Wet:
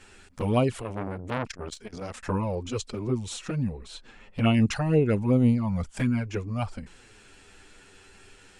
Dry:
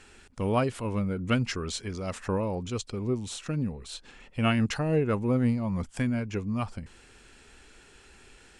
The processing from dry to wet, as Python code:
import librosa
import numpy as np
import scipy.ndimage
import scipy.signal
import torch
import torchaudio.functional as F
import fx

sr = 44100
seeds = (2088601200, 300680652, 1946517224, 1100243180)

y = fx.high_shelf(x, sr, hz=3500.0, db=-7.5, at=(3.78, 4.54))
y = fx.env_flanger(y, sr, rest_ms=11.6, full_db=-20.5)
y = fx.transformer_sat(y, sr, knee_hz=1400.0, at=(0.82, 2.23))
y = y * librosa.db_to_amplitude(4.5)